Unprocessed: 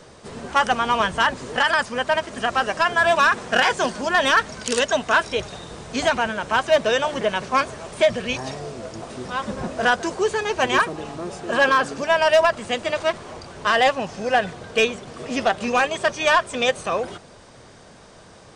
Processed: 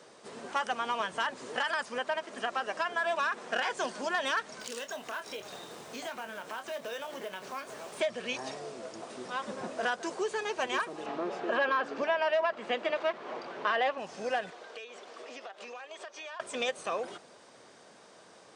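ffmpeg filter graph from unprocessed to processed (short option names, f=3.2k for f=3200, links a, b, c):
-filter_complex "[0:a]asettb=1/sr,asplit=3[a][b][c];[a]atrim=end=1.984[d];[b]atrim=start=1.98:end=3.75,asetpts=PTS-STARTPTS,afade=t=in:d=0.004:c=qsin,afade=t=out:st=1.766:d=0.004:c=qsin,highpass=140,highshelf=f=5k:g=-4.5[e];[c]atrim=start=3.746[f];[d][e]acrossfade=d=0.004:c1=hsin:c2=qsin[g];[g][f]acrossfade=d=0.004:c1=qsin:c2=hsin,asettb=1/sr,asplit=3[h][i][j];[h]atrim=end=4.604[k];[i]atrim=start=4.6:end=8,asetpts=PTS-STARTPTS,afade=t=in:d=0.004:c=qsin,afade=t=out:st=3.396:d=0.004:c=qsin,acompressor=threshold=-30dB:ratio=4:attack=3.2:release=140:knee=1:detection=peak,acrusher=bits=4:mode=log:mix=0:aa=0.000001,asplit=2[l][m];[m]adelay=26,volume=-9.5dB[n];[l][n]amix=inputs=2:normalize=0,atrim=end_sample=149940[o];[j]atrim=start=7.996[p];[k][o]acrossfade=d=0.004:c1=hsin:c2=qsin[q];[q][p]acrossfade=d=0.004:c1=qsin:c2=hsin,asettb=1/sr,asplit=3[r][s][t];[r]atrim=end=11.064[u];[s]atrim=start=11.06:end=13.98,asetpts=PTS-STARTPTS,afade=t=in:d=0.004:c=qsin,afade=t=out:st=2.916:d=0.004:c=qsin,acontrast=73,highpass=190,lowpass=3k[v];[t]atrim=start=13.976[w];[u][v]acrossfade=d=0.004:c1=hsin:c2=qsin[x];[x][w]acrossfade=d=0.004:c1=qsin:c2=hsin,asettb=1/sr,asplit=3[y][z][aa];[y]atrim=end=14.504[ab];[z]atrim=start=14.5:end=16.4,asetpts=PTS-STARTPTS,afade=t=in:d=0.004:c=qsin,afade=t=out:st=1.896:d=0.004:c=qsin,acrossover=split=340 7100:gain=0.1 1 0.224[ac][ad][ae];[ac][ad][ae]amix=inputs=3:normalize=0,acompressor=threshold=-33dB:ratio=10:attack=3.2:release=140:knee=1:detection=peak[af];[aa]atrim=start=16.396[ag];[ab][af]acrossfade=d=0.004:c1=hsin:c2=qsin[ah];[ah][ag]acrossfade=d=0.004:c1=qsin:c2=hsin,highpass=270,acompressor=threshold=-22dB:ratio=2.5,volume=-7.5dB"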